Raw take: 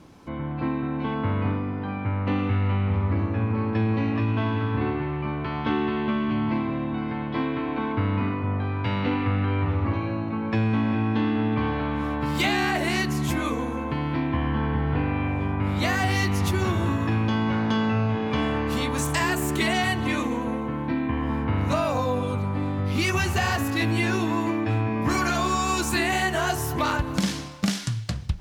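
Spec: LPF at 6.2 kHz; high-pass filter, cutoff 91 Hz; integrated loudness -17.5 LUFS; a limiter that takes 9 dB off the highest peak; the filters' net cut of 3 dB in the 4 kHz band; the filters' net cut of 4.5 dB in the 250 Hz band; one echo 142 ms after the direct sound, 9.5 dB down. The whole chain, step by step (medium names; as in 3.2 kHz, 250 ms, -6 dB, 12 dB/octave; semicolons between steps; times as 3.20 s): high-pass 91 Hz; low-pass 6.2 kHz; peaking EQ 250 Hz -5.5 dB; peaking EQ 4 kHz -3.5 dB; peak limiter -21.5 dBFS; delay 142 ms -9.5 dB; trim +12.5 dB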